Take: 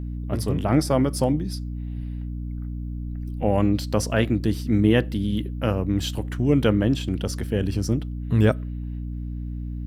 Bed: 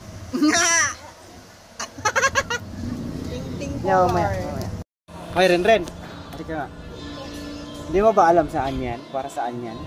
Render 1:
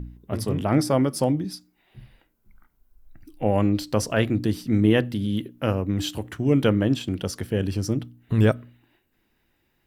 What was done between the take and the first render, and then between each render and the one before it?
de-hum 60 Hz, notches 5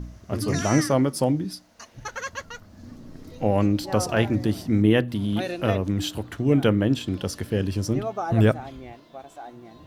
add bed -14 dB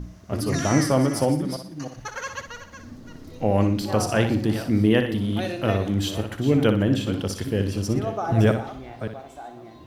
chunks repeated in reverse 313 ms, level -11.5 dB; flutter echo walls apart 10.4 m, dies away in 0.42 s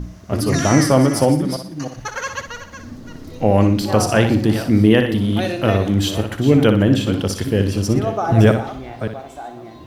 trim +6.5 dB; peak limiter -1 dBFS, peak gain reduction 2.5 dB

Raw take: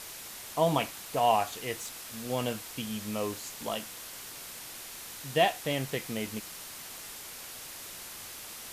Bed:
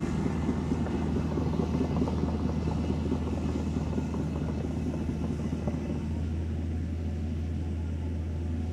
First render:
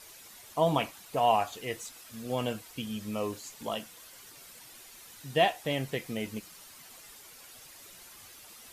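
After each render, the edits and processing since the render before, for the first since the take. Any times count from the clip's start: noise reduction 10 dB, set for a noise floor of -44 dBFS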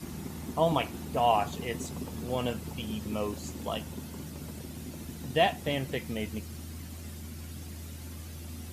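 add bed -10.5 dB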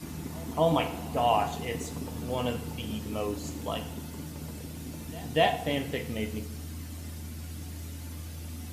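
pre-echo 245 ms -23 dB; FDN reverb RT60 0.73 s, low-frequency decay 0.95×, high-frequency decay 0.85×, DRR 6 dB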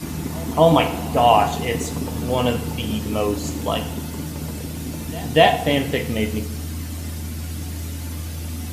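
trim +10.5 dB; peak limiter -2 dBFS, peak gain reduction 1 dB

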